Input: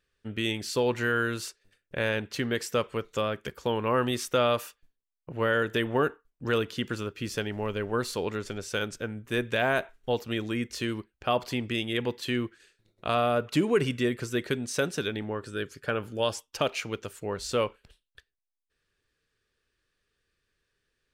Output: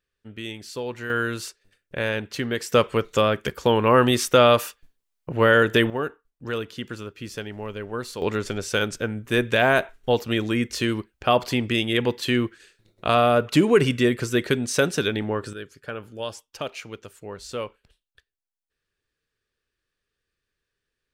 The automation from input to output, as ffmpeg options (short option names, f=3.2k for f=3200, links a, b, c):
-af "asetnsamples=n=441:p=0,asendcmd='1.1 volume volume 2.5dB;2.72 volume volume 9dB;5.9 volume volume -2dB;8.22 volume volume 7dB;15.53 volume volume -4dB',volume=-5dB"